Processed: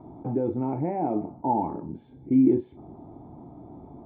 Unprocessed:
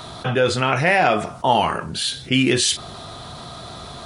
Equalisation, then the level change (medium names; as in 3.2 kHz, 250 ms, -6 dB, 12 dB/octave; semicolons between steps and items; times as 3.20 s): cascade formant filter u; +5.0 dB